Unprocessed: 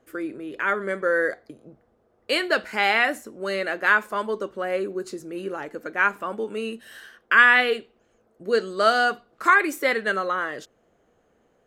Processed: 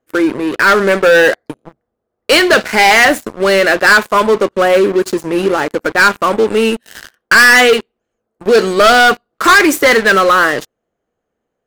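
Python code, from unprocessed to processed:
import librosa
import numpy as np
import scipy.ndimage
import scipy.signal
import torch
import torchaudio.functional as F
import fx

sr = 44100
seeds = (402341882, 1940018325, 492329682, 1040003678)

y = fx.leveller(x, sr, passes=5)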